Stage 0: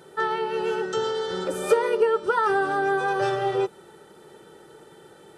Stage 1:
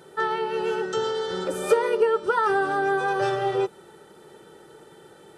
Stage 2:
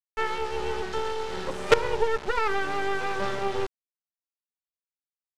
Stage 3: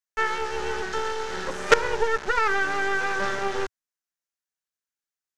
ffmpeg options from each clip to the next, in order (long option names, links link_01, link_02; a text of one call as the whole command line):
ffmpeg -i in.wav -af anull out.wav
ffmpeg -i in.wav -af "acrusher=bits=3:dc=4:mix=0:aa=0.000001,lowpass=5100" out.wav
ffmpeg -i in.wav -af "equalizer=frequency=100:width_type=o:width=0.67:gain=-6,equalizer=frequency=1600:width_type=o:width=0.67:gain=8,equalizer=frequency=6300:width_type=o:width=0.67:gain=7" out.wav